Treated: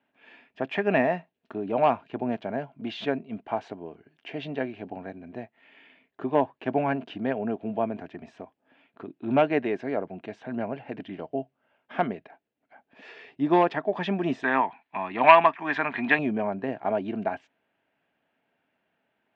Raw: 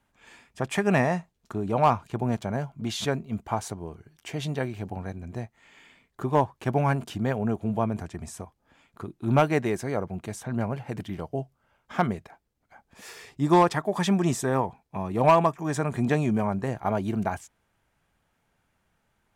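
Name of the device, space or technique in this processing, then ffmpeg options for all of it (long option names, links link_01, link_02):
kitchen radio: -filter_complex "[0:a]highpass=210,equalizer=frequency=270:width_type=q:width=4:gain=8,equalizer=frequency=420:width_type=q:width=4:gain=3,equalizer=frequency=650:width_type=q:width=4:gain=7,equalizer=frequency=1200:width_type=q:width=4:gain=-4,equalizer=frequency=1700:width_type=q:width=4:gain=4,equalizer=frequency=2700:width_type=q:width=4:gain=6,lowpass=frequency=3600:width=0.5412,lowpass=frequency=3600:width=1.3066,asettb=1/sr,asplit=3[link_01][link_02][link_03];[link_01]atrim=end=14.434[link_04];[link_02]atrim=start=14.43:end=16.19,asetpts=PTS-STARTPTS,afade=type=in:duration=0.004:curve=qsin,afade=type=out:start_time=1.756:duration=0.004:curve=qsin,equalizer=frequency=125:width_type=o:width=1:gain=-7,equalizer=frequency=500:width_type=o:width=1:gain=-9,equalizer=frequency=1000:width_type=o:width=1:gain=9,equalizer=frequency=2000:width_type=o:width=1:gain=11,equalizer=frequency=4000:width_type=o:width=1:gain=8,equalizer=frequency=8000:width_type=o:width=1:gain=-5[link_05];[link_03]atrim=start=16.186[link_06];[link_04][link_05]acrossfade=duration=0.004:curve1=hsin:curve2=qsin[link_07];[link_07][link_06]acrossfade=duration=0.004:curve1=qsin:curve2=hsin,volume=-3.5dB"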